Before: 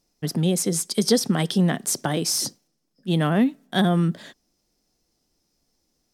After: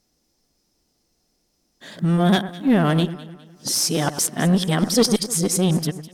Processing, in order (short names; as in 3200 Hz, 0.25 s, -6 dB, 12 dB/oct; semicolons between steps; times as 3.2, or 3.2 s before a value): whole clip reversed; one-sided clip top -17.5 dBFS; echo with dull and thin repeats by turns 0.102 s, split 1800 Hz, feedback 61%, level -12 dB; gain +3 dB